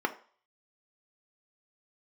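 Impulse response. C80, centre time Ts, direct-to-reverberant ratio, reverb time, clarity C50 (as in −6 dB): 19.5 dB, 7 ms, 4.5 dB, 0.45 s, 15.0 dB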